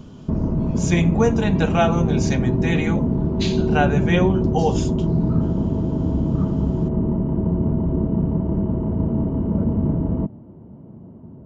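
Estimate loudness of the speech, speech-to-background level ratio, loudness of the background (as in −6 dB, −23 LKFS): −22.5 LKFS, −1.0 dB, −21.5 LKFS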